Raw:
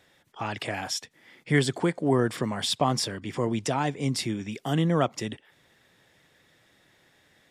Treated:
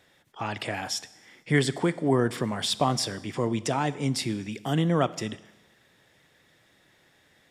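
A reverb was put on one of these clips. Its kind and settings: Schroeder reverb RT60 1.1 s, combs from 26 ms, DRR 16.5 dB

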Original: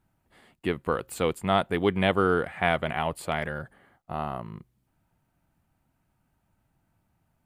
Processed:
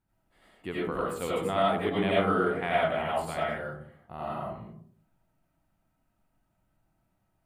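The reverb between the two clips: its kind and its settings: digital reverb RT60 0.59 s, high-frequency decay 0.35×, pre-delay 50 ms, DRR -6.5 dB; gain -9.5 dB

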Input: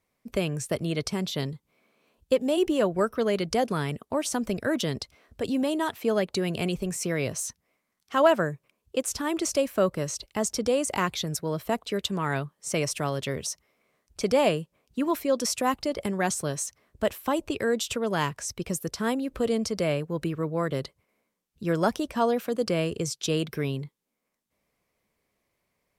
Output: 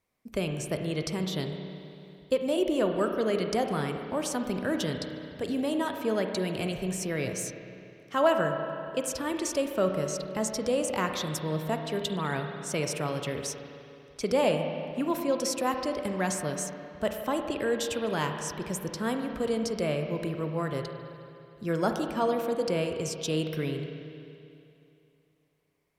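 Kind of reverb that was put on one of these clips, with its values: spring tank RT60 2.7 s, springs 32/54 ms, chirp 20 ms, DRR 4.5 dB; gain -3.5 dB

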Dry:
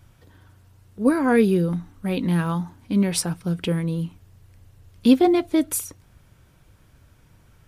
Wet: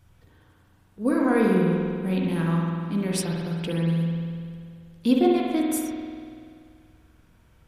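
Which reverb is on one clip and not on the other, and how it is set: spring tank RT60 2.2 s, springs 48 ms, chirp 25 ms, DRR -2 dB; gain -6 dB

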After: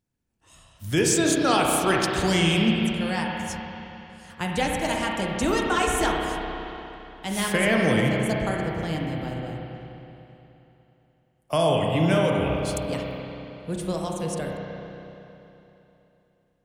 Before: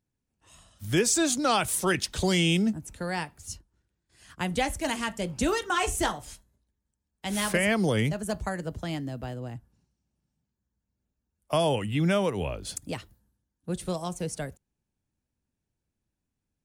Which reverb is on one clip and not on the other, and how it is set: spring tank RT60 3.2 s, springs 31/59 ms, chirp 35 ms, DRR -1 dB; gain +1 dB

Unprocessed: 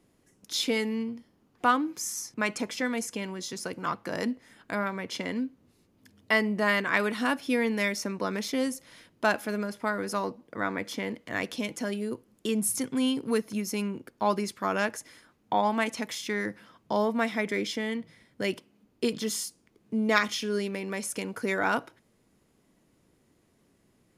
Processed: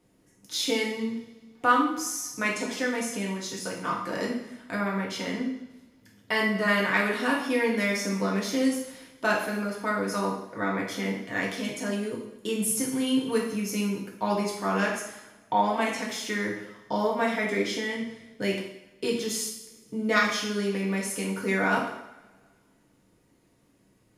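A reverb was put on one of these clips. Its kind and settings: two-slope reverb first 0.72 s, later 1.8 s, DRR -3.5 dB; gain -3 dB

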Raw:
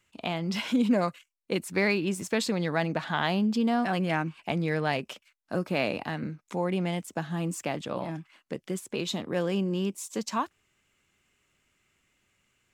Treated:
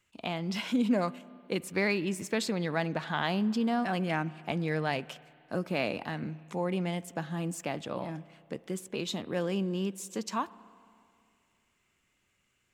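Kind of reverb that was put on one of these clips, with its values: spring tank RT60 2.4 s, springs 32/51 ms, chirp 55 ms, DRR 19 dB; gain -3 dB

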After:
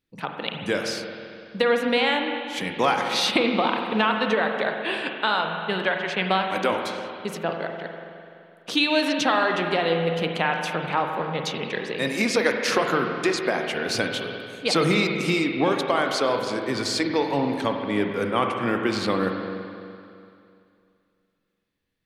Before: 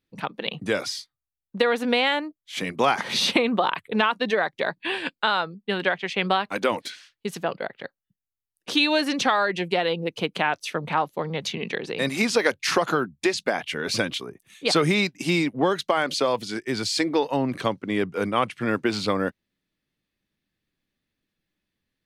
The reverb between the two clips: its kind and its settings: spring tank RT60 2.5 s, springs 42/48 ms, chirp 55 ms, DRR 3 dB; gain -1 dB

